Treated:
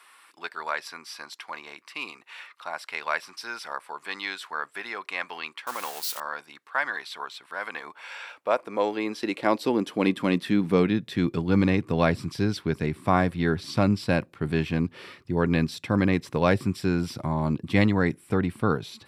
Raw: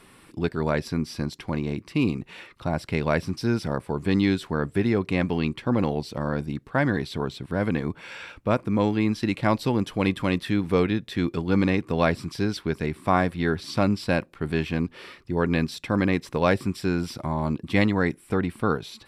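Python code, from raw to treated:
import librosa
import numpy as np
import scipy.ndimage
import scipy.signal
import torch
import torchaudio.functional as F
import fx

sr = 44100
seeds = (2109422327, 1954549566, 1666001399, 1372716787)

y = fx.crossing_spikes(x, sr, level_db=-22.5, at=(5.67, 6.2))
y = fx.filter_sweep_highpass(y, sr, from_hz=1100.0, to_hz=100.0, start_s=7.61, end_s=11.53, q=1.4)
y = F.gain(torch.from_numpy(y), -1.0).numpy()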